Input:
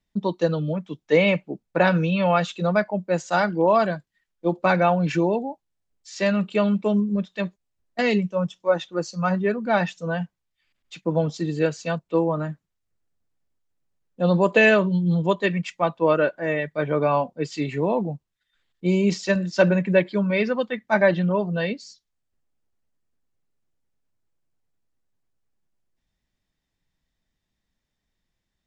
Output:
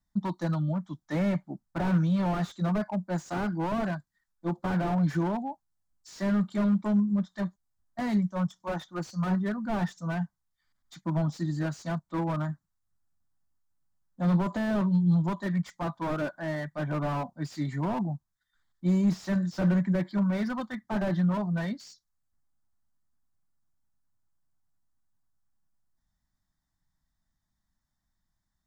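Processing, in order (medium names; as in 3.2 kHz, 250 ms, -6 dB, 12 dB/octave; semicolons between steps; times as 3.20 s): static phaser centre 1.1 kHz, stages 4; slew-rate limiter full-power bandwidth 25 Hz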